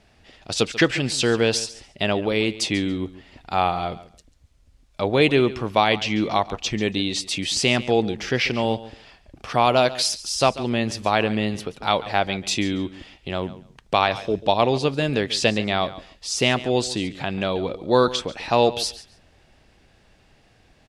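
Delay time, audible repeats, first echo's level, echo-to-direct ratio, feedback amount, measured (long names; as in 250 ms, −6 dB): 140 ms, 2, −16.5 dB, −16.5 dB, 18%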